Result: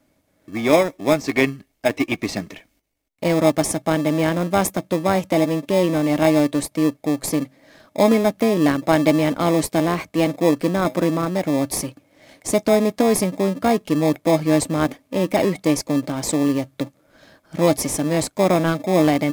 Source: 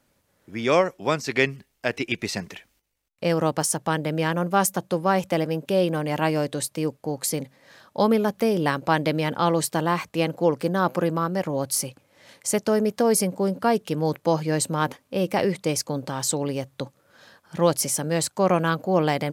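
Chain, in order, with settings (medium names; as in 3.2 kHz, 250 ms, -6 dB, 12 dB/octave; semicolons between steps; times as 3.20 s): band-stop 890 Hz, Q 12; small resonant body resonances 290/630/2200 Hz, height 11 dB, ringing for 55 ms; in parallel at -7 dB: sample-and-hold 30×; on the sum: trim -1 dB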